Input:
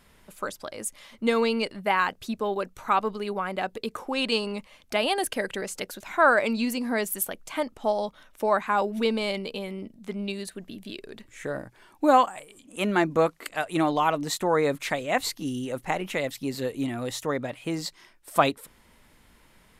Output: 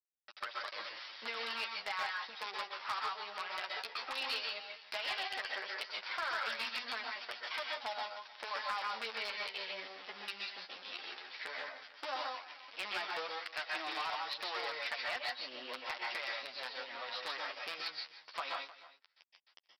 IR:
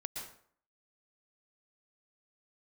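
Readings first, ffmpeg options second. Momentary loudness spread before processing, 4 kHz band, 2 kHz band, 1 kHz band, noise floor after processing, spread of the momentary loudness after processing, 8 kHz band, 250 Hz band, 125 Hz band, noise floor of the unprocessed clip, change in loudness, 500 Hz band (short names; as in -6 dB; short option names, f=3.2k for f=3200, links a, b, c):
13 LU, -4.5 dB, -8.0 dB, -13.5 dB, -66 dBFS, 7 LU, -21.0 dB, -31.0 dB, under -35 dB, -59 dBFS, -12.5 dB, -20.5 dB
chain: -filter_complex "[0:a]aeval=exprs='if(lt(val(0),0),0.708*val(0),val(0))':c=same,aresample=11025,acrusher=bits=5:dc=4:mix=0:aa=0.000001,aresample=44100,acompressor=threshold=-34dB:ratio=10,highpass=1k,aecho=1:1:309:0.119[a];[1:a]atrim=start_sample=2205,afade=t=out:st=0.21:d=0.01,atrim=end_sample=9702,asetrate=41013,aresample=44100[b];[a][b]afir=irnorm=-1:irlink=0,flanger=delay=8.3:depth=3.2:regen=6:speed=0.13:shape=sinusoidal,asplit=2[c][d];[d]alimiter=level_in=12dB:limit=-24dB:level=0:latency=1:release=201,volume=-12dB,volume=-1dB[e];[c][e]amix=inputs=2:normalize=0,volume=33.5dB,asoftclip=hard,volume=-33.5dB,volume=4dB"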